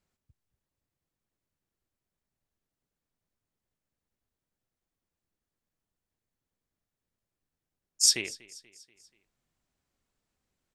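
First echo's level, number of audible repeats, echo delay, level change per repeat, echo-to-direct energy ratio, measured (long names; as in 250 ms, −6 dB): −21.5 dB, 3, 241 ms, −5.5 dB, −20.0 dB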